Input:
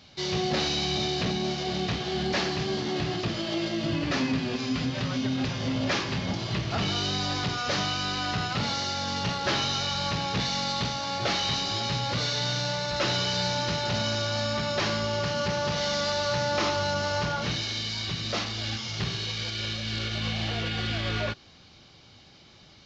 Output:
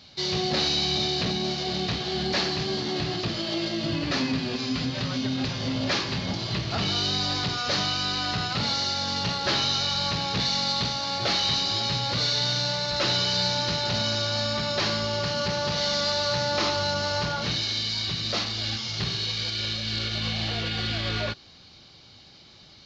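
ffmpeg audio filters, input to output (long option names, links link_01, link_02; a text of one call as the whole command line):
ffmpeg -i in.wav -af "equalizer=frequency=4300:width_type=o:width=0.48:gain=7" out.wav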